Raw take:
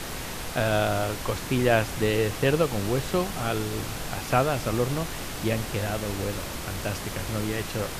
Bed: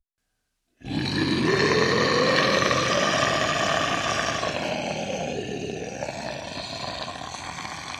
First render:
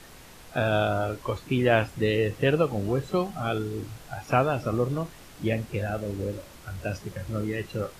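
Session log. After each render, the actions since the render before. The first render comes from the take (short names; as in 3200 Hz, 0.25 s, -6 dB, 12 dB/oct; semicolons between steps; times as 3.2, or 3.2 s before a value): noise print and reduce 14 dB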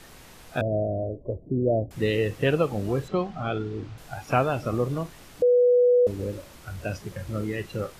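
0.61–1.91 Chebyshev low-pass 650 Hz, order 5; 3.08–3.98 air absorption 150 m; 5.42–6.07 bleep 491 Hz -15 dBFS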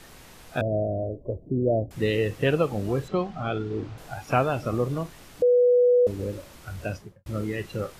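3.7–4.13 bell 520 Hz +5 dB 2.6 oct; 6.85–7.26 studio fade out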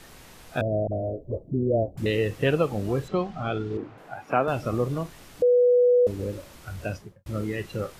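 0.87–2.06 dispersion highs, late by 67 ms, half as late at 440 Hz; 3.77–4.48 three-band isolator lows -18 dB, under 170 Hz, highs -14 dB, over 2500 Hz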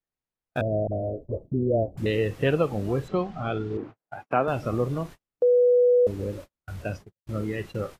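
high shelf 3100 Hz -4.5 dB; gate -39 dBFS, range -46 dB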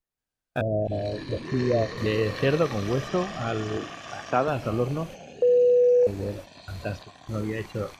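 add bed -15 dB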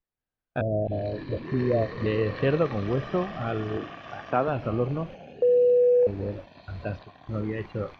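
air absorption 290 m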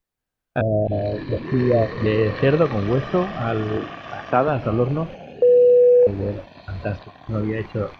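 gain +6.5 dB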